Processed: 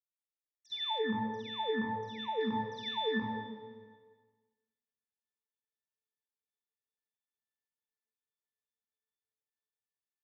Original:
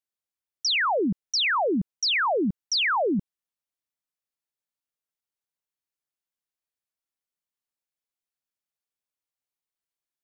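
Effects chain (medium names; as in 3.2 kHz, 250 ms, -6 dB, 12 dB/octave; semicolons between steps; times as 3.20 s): spectral sustain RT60 1.30 s; high-pass 180 Hz 6 dB/octave; bass shelf 410 Hz -4.5 dB; band-stop 4.3 kHz, Q 5.4; touch-sensitive flanger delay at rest 11.9 ms, full sweep at -15.5 dBFS; level rider gain up to 16.5 dB; pitch-class resonator A, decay 0.45 s; peaking EQ 4.5 kHz -5 dB 0.58 oct, from 0.98 s -15 dB, from 2.41 s -2.5 dB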